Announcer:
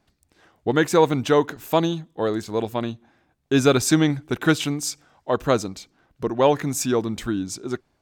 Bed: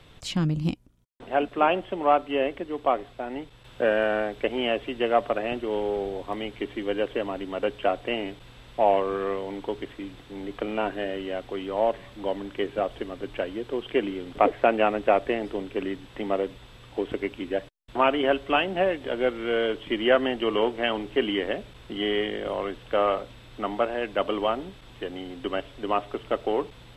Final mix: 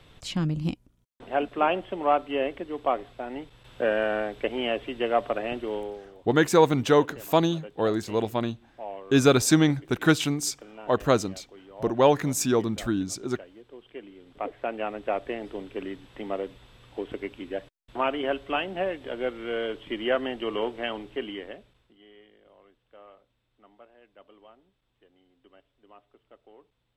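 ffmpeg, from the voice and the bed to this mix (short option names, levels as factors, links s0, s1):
-filter_complex "[0:a]adelay=5600,volume=0.841[s0];[1:a]volume=3.16,afade=t=out:st=5.67:d=0.35:silence=0.177828,afade=t=in:st=14.1:d=1.5:silence=0.251189,afade=t=out:st=20.8:d=1.16:silence=0.0707946[s1];[s0][s1]amix=inputs=2:normalize=0"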